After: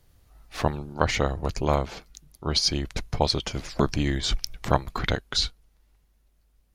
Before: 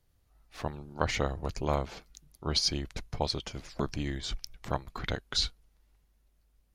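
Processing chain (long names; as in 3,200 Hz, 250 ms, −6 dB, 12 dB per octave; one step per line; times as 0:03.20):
speech leveller within 4 dB 0.5 s
level +7 dB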